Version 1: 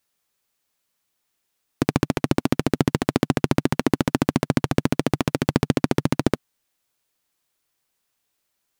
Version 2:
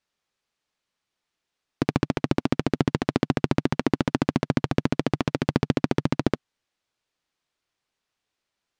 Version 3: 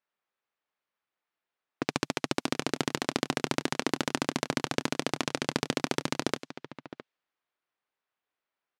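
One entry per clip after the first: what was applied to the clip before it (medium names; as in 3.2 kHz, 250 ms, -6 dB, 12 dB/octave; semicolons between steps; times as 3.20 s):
low-pass 5.3 kHz 12 dB/octave; trim -2.5 dB
RIAA curve recording; delay 662 ms -14 dB; level-controlled noise filter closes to 1.6 kHz, open at -26 dBFS; trim -2.5 dB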